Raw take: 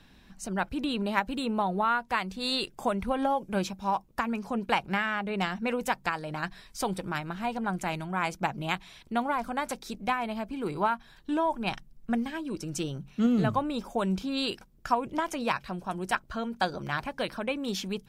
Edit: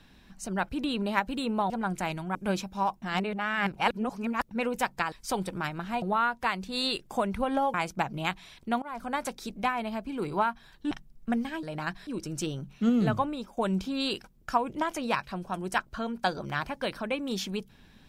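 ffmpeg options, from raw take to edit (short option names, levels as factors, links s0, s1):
-filter_complex "[0:a]asplit=13[s0][s1][s2][s3][s4][s5][s6][s7][s8][s9][s10][s11][s12];[s0]atrim=end=1.702[s13];[s1]atrim=start=7.528:end=8.182[s14];[s2]atrim=start=3.418:end=4.092[s15];[s3]atrim=start=4.088:end=5.582,asetpts=PTS-STARTPTS,areverse[s16];[s4]atrim=start=5.578:end=6.192[s17];[s5]atrim=start=6.628:end=7.532[s18];[s6]atrim=start=1.698:end=3.422[s19];[s7]atrim=start=8.178:end=9.26,asetpts=PTS-STARTPTS,afade=t=out:st=1.078:d=0.004:c=hsin:silence=0.0794328[s20];[s8]atrim=start=9.26:end=11.352,asetpts=PTS-STARTPTS,afade=t=in:d=0.3:silence=0.0794328[s21];[s9]atrim=start=11.718:end=12.442[s22];[s10]atrim=start=6.188:end=6.632[s23];[s11]atrim=start=12.438:end=13.94,asetpts=PTS-STARTPTS,afade=t=out:st=1.132:d=0.37:silence=0.251189[s24];[s12]atrim=start=13.94,asetpts=PTS-STARTPTS,afade=t=in:d=0.004:c=hsin:silence=0.251189[s25];[s13][s14]acrossfade=d=0.004:c1=hsin:c2=hsin[s26];[s26][s15]acrossfade=d=0.004:c1=hsin:c2=hsin[s27];[s27][s16]acrossfade=d=0.004:c1=hsin:c2=hsin[s28];[s28][s17]acrossfade=d=0.004:c1=hsin:c2=hsin[s29];[s29][s18]acrossfade=d=0.004:c1=hsin:c2=hsin[s30];[s30][s19]acrossfade=d=0.004:c1=hsin:c2=hsin[s31];[s20][s21]concat=n=2:v=0:a=1[s32];[s31][s32]acrossfade=d=0.004:c1=hsin:c2=hsin[s33];[s33][s22]acrossfade=d=0.004:c1=hsin:c2=hsin[s34];[s34][s23]acrossfade=d=0.004:c1=hsin:c2=hsin[s35];[s24][s25]concat=n=2:v=0:a=1[s36];[s35][s36]acrossfade=d=0.004:c1=hsin:c2=hsin"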